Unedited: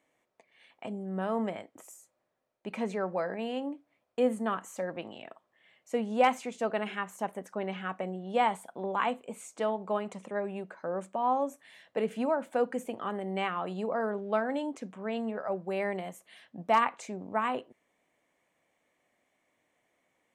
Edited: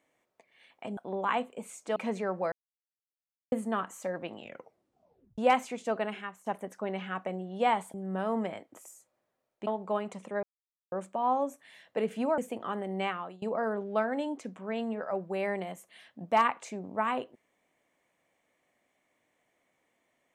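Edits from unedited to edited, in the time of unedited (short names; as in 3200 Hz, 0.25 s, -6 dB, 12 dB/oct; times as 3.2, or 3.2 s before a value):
0.97–2.7 swap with 8.68–9.67
3.26–4.26 mute
5.12 tape stop 1.00 s
6.71–7.2 fade out, to -13 dB
10.43–10.92 mute
12.38–12.75 cut
13.42–13.79 fade out, to -23 dB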